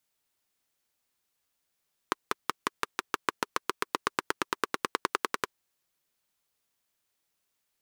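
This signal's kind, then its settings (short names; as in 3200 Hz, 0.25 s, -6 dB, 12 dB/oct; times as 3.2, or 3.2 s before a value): single-cylinder engine model, changing speed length 3.41 s, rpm 600, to 1300, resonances 400/1100 Hz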